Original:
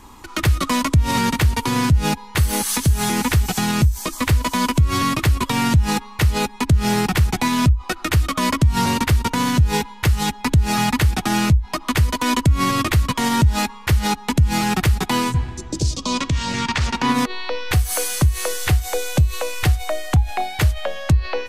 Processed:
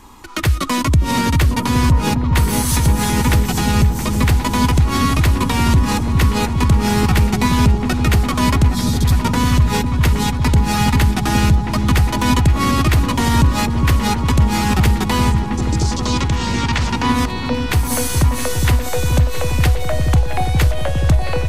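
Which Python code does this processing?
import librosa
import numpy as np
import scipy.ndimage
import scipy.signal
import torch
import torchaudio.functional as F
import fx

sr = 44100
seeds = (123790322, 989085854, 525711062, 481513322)

y = fx.spec_repair(x, sr, seeds[0], start_s=8.72, length_s=0.38, low_hz=250.0, high_hz=3200.0, source='both')
y = fx.echo_opening(y, sr, ms=408, hz=400, octaves=1, feedback_pct=70, wet_db=-3)
y = y * librosa.db_to_amplitude(1.0)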